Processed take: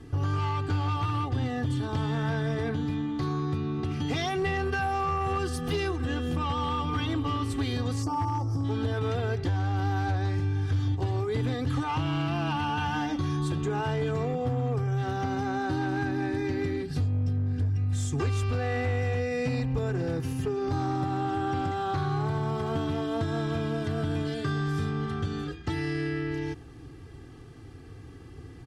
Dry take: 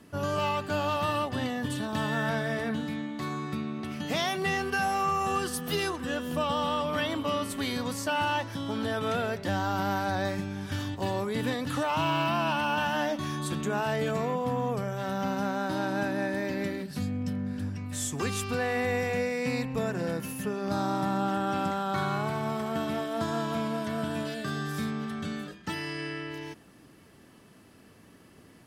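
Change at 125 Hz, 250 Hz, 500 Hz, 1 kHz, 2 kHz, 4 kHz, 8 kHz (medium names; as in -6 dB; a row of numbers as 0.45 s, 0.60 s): +8.0 dB, +0.5 dB, -1.0 dB, -1.5 dB, -3.0 dB, -3.5 dB, -6.5 dB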